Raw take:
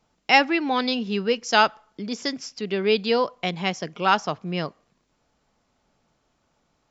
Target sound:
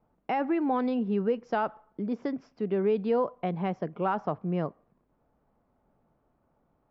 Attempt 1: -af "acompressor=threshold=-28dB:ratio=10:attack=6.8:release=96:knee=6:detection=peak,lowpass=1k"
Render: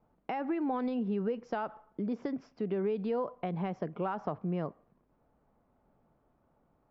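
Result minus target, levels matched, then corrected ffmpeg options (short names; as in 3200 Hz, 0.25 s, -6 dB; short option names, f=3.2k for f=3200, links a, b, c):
compressor: peak gain reduction +7 dB
-af "acompressor=threshold=-20dB:ratio=10:attack=6.8:release=96:knee=6:detection=peak,lowpass=1k"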